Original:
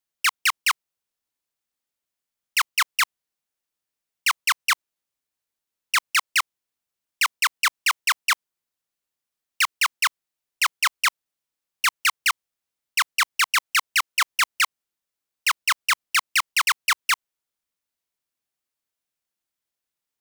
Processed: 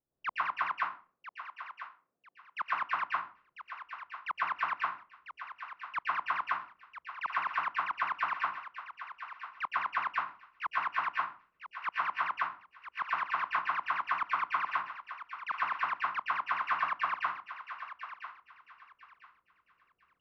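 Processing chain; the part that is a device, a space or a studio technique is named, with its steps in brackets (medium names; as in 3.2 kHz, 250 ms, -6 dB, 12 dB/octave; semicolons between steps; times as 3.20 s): 0.64–2.68 s: high-pass 150 Hz; distance through air 160 m; television next door (compression 3:1, threshold -24 dBFS, peak gain reduction 5 dB; low-pass 560 Hz 12 dB/octave; reverberation RT60 0.40 s, pre-delay 112 ms, DRR -4.5 dB); thinning echo 997 ms, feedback 29%, high-pass 990 Hz, level -9.5 dB; trim +8 dB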